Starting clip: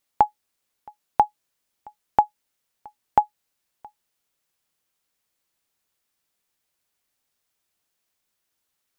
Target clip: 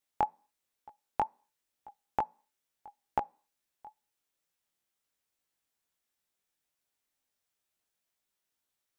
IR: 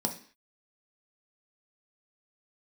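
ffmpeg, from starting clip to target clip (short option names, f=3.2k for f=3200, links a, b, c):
-filter_complex "[0:a]acompressor=threshold=-18dB:ratio=6,flanger=delay=16:depth=6.6:speed=2.2,asplit=2[a][b];[1:a]atrim=start_sample=2205,lowshelf=f=330:g=-12[c];[b][c]afir=irnorm=-1:irlink=0,volume=-23.5dB[d];[a][d]amix=inputs=2:normalize=0,volume=-4.5dB"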